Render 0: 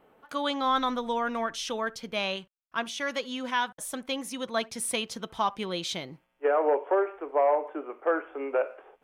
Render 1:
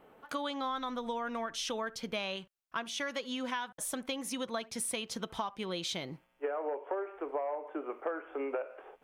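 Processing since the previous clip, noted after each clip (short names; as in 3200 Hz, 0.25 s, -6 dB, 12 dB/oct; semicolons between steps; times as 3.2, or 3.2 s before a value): compressor 10:1, threshold -34 dBFS, peak gain reduction 14.5 dB; gain +1.5 dB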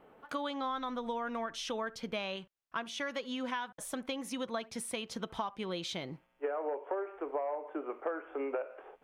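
high shelf 4400 Hz -7.5 dB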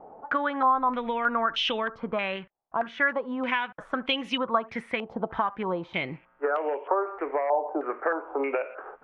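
stepped low-pass 3.2 Hz 790–2900 Hz; gain +6.5 dB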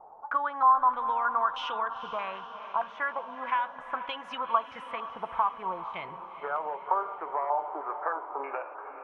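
ten-band EQ 125 Hz -4 dB, 250 Hz -11 dB, 500 Hz -4 dB, 1000 Hz +12 dB, 2000 Hz -5 dB, 4000 Hz -5 dB; diffused feedback echo 0.454 s, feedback 58%, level -11 dB; gain -7 dB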